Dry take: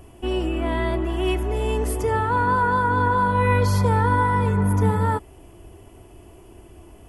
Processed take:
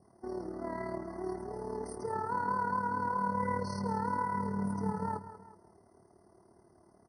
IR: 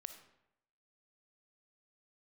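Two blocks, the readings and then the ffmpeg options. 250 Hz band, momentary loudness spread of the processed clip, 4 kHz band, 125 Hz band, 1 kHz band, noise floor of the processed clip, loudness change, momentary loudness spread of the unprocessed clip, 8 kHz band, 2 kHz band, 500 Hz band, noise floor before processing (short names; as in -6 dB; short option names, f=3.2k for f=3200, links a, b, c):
-11.5 dB, 8 LU, -21.0 dB, -20.5 dB, -11.5 dB, -64 dBFS, -14.0 dB, 5 LU, -16.0 dB, -17.0 dB, -14.0 dB, -47 dBFS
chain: -filter_complex "[0:a]asplit=2[a][b];[b]aecho=0:1:188:0.224[c];[a][c]amix=inputs=2:normalize=0,tremolo=f=37:d=0.621,adynamicequalizer=threshold=0.00794:dfrequency=1400:dqfactor=3.8:tfrequency=1400:tqfactor=3.8:attack=5:release=100:ratio=0.375:range=2.5:mode=cutabove:tftype=bell,acrusher=bits=8:mode=log:mix=0:aa=0.000001,highpass=180,equalizer=f=190:t=q:w=4:g=4,equalizer=f=300:t=q:w=4:g=-8,equalizer=f=480:t=q:w=4:g=-4,equalizer=f=1.8k:t=q:w=4:g=-9,equalizer=f=3.9k:t=q:w=4:g=-5,equalizer=f=7.1k:t=q:w=4:g=-4,lowpass=f=9.6k:w=0.5412,lowpass=f=9.6k:w=1.3066,asplit=2[d][e];[e]aecho=0:1:373:0.106[f];[d][f]amix=inputs=2:normalize=0,afftfilt=real='re*eq(mod(floor(b*sr/1024/2100),2),0)':imag='im*eq(mod(floor(b*sr/1024/2100),2),0)':win_size=1024:overlap=0.75,volume=-8dB"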